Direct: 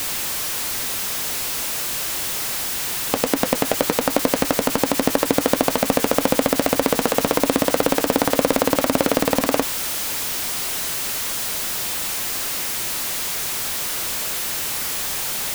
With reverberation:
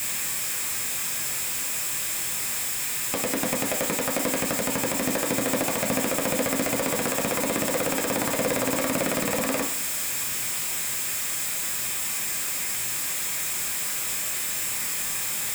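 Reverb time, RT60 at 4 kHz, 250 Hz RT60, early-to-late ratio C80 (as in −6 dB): 0.45 s, 0.45 s, 0.50 s, 14.5 dB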